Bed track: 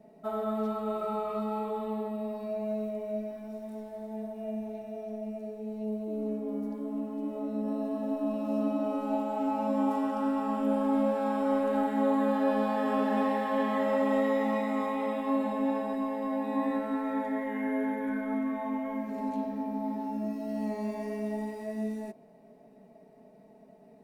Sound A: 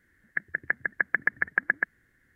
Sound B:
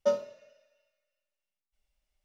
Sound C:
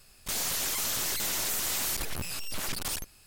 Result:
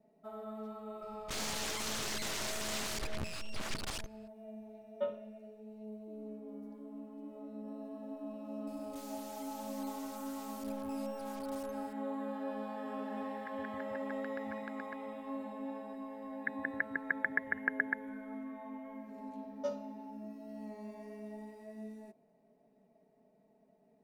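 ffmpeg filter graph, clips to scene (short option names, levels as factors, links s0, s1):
-filter_complex "[3:a]asplit=2[s0][s1];[2:a]asplit=2[s2][s3];[1:a]asplit=2[s4][s5];[0:a]volume=0.224[s6];[s0]adynamicsmooth=sensitivity=7.5:basefreq=3100[s7];[s2]aresample=8000,aresample=44100[s8];[s1]acompressor=threshold=0.00251:ratio=3:attack=0.37:release=29:knee=1:detection=peak[s9];[s4]acompressor=threshold=0.01:ratio=6:attack=3.2:release=140:knee=1:detection=peak[s10];[s7]atrim=end=3.26,asetpts=PTS-STARTPTS,volume=0.668,afade=t=in:d=0.004:c=hsin,afade=t=out:st=3.256:d=0.004:c=hsin,adelay=1020[s11];[s8]atrim=end=2.24,asetpts=PTS-STARTPTS,volume=0.335,afade=t=in:d=0.004:c=hsin,afade=t=out:st=2.236:d=0.004:c=hsin,adelay=4950[s12];[s9]atrim=end=3.26,asetpts=PTS-STARTPTS,volume=0.501,afade=t=in:d=0.004:c=hsin,afade=t=out:st=3.256:d=0.004:c=hsin,adelay=8670[s13];[s10]atrim=end=2.35,asetpts=PTS-STARTPTS,volume=0.501,afade=t=in:d=0.004:c=hsin,afade=t=out:st=2.346:d=0.004:c=hsin,adelay=13100[s14];[s5]atrim=end=2.35,asetpts=PTS-STARTPTS,volume=0.398,afade=t=in:d=0.004:c=hsin,afade=t=out:st=2.346:d=0.004:c=hsin,adelay=16100[s15];[s3]atrim=end=2.24,asetpts=PTS-STARTPTS,volume=0.282,afade=t=in:d=0.004:c=hsin,afade=t=out:st=2.236:d=0.004:c=hsin,adelay=19580[s16];[s6][s11][s12][s13][s14][s15][s16]amix=inputs=7:normalize=0"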